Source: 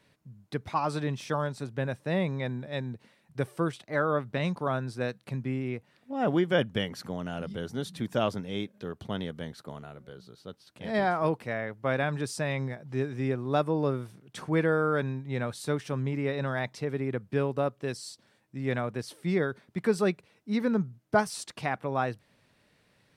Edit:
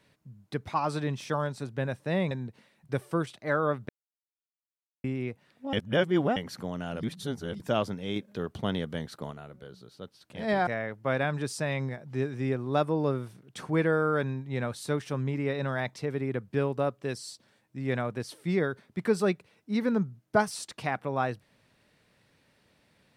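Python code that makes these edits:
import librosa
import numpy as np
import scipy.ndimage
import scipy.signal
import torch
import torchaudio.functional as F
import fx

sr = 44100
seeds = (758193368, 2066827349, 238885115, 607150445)

y = fx.edit(x, sr, fx.cut(start_s=2.31, length_s=0.46),
    fx.silence(start_s=4.35, length_s=1.15),
    fx.reverse_span(start_s=6.19, length_s=0.63),
    fx.reverse_span(start_s=7.49, length_s=0.57),
    fx.clip_gain(start_s=8.62, length_s=1.15, db=3.5),
    fx.cut(start_s=11.13, length_s=0.33), tone=tone)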